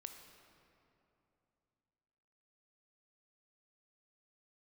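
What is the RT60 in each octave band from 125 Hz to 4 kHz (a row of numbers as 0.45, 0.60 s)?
3.4, 3.3, 3.0, 2.8, 2.3, 1.7 s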